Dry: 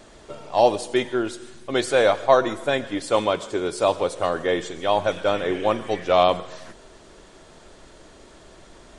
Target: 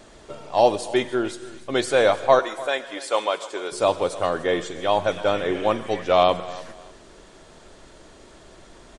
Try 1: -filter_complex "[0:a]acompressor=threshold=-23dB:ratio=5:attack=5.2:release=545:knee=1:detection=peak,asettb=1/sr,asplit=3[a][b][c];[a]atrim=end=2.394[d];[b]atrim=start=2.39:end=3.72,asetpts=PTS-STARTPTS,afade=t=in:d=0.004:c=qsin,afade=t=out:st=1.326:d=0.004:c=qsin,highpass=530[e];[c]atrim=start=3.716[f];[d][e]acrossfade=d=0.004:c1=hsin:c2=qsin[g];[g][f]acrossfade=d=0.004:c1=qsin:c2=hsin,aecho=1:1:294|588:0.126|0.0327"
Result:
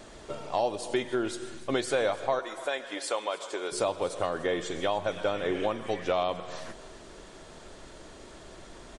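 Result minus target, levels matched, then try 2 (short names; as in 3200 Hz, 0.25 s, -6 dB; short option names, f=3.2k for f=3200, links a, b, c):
compressor: peak gain reduction +13.5 dB
-filter_complex "[0:a]asettb=1/sr,asplit=3[a][b][c];[a]atrim=end=2.394[d];[b]atrim=start=2.39:end=3.72,asetpts=PTS-STARTPTS,afade=t=in:d=0.004:c=qsin,afade=t=out:st=1.326:d=0.004:c=qsin,highpass=530[e];[c]atrim=start=3.716[f];[d][e]acrossfade=d=0.004:c1=hsin:c2=qsin[g];[g][f]acrossfade=d=0.004:c1=qsin:c2=hsin,aecho=1:1:294|588:0.126|0.0327"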